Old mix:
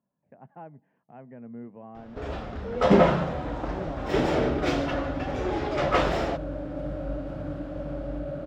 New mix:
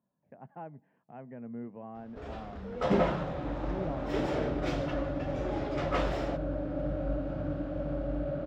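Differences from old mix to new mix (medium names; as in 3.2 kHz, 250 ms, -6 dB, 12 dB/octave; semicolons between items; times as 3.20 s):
first sound -8.5 dB; second sound: add distance through air 98 m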